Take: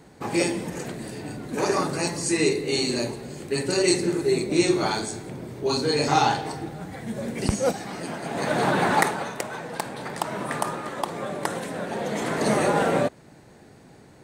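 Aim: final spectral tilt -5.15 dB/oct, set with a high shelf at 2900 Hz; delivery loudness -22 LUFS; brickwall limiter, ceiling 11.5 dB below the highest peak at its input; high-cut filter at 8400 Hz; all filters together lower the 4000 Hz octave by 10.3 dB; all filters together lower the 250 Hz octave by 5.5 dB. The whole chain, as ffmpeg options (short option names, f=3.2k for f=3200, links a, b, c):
-af "lowpass=8.4k,equalizer=f=250:t=o:g=-8.5,highshelf=f=2.9k:g=-6,equalizer=f=4k:t=o:g=-7,volume=9.5dB,alimiter=limit=-10dB:level=0:latency=1"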